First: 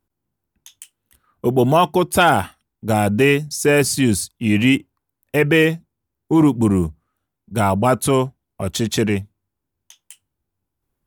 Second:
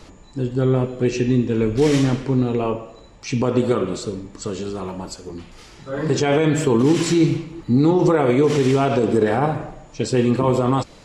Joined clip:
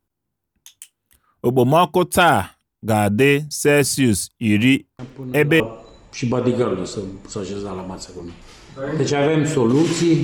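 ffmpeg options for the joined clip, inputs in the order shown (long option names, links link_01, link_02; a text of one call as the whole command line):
ffmpeg -i cue0.wav -i cue1.wav -filter_complex "[1:a]asplit=2[link_01][link_02];[0:a]apad=whole_dur=10.23,atrim=end=10.23,atrim=end=5.602[link_03];[link_02]atrim=start=2.698:end=7.33[link_04];[link_01]atrim=start=2.09:end=2.7,asetpts=PTS-STARTPTS,volume=-12.5dB,afade=type=in:duration=0.004:curve=hsin,afade=type=out:start_time=0.606:duration=0.004:curve=hsin,adelay=4990[link_05];[link_03][link_04]acrossfade=duration=0.004:curve1=hsin:curve2=hsin[link_06];[link_06][link_05]amix=inputs=2:normalize=0" out.wav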